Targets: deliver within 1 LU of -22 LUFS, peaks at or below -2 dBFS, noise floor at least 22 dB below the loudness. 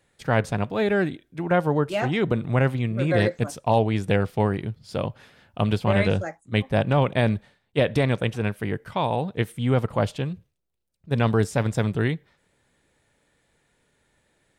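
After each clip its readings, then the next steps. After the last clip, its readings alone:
loudness -24.5 LUFS; peak -9.5 dBFS; loudness target -22.0 LUFS
-> gain +2.5 dB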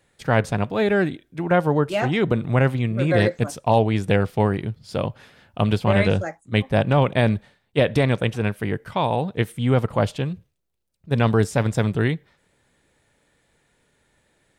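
loudness -22.0 LUFS; peak -7.0 dBFS; noise floor -68 dBFS

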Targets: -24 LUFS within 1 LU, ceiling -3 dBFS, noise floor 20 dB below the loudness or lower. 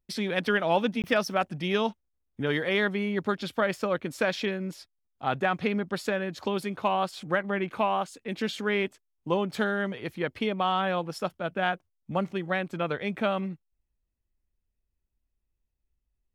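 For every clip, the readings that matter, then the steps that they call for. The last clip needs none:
dropouts 1; longest dropout 18 ms; loudness -29.0 LUFS; peak -11.5 dBFS; loudness target -24.0 LUFS
-> interpolate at 1.02, 18 ms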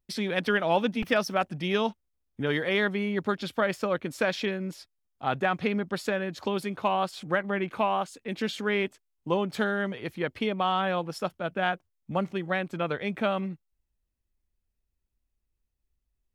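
dropouts 0; loudness -29.0 LUFS; peak -11.5 dBFS; loudness target -24.0 LUFS
-> gain +5 dB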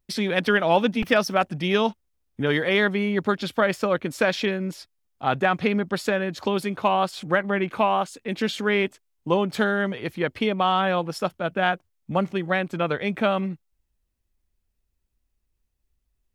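loudness -24.0 LUFS; peak -6.5 dBFS; noise floor -76 dBFS

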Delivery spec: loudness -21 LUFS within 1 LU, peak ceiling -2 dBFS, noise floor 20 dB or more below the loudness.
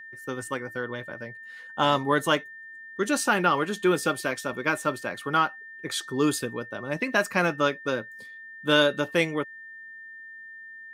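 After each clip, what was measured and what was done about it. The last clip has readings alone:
steady tone 1800 Hz; tone level -41 dBFS; loudness -26.5 LUFS; peak -8.5 dBFS; loudness target -21.0 LUFS
-> notch 1800 Hz, Q 30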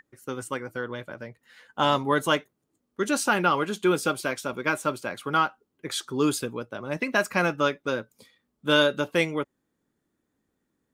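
steady tone none; loudness -26.5 LUFS; peak -8.5 dBFS; loudness target -21.0 LUFS
-> gain +5.5 dB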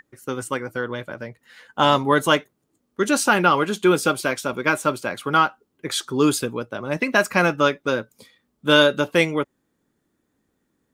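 loudness -21.0 LUFS; peak -3.0 dBFS; noise floor -73 dBFS

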